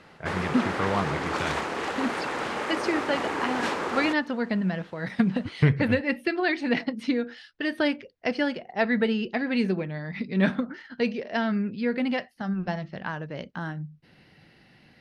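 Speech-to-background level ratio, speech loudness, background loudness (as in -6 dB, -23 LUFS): 2.0 dB, -28.0 LUFS, -30.0 LUFS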